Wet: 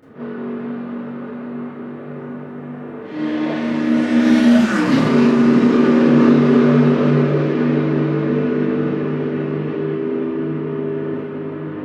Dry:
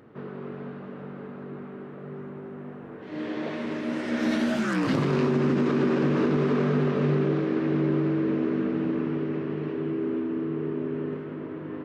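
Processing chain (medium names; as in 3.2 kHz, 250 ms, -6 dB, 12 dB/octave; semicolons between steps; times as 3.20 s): echo that smears into a reverb 588 ms, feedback 42%, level -13.5 dB; Schroeder reverb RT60 0.37 s, combs from 26 ms, DRR -9.5 dB; trim -1 dB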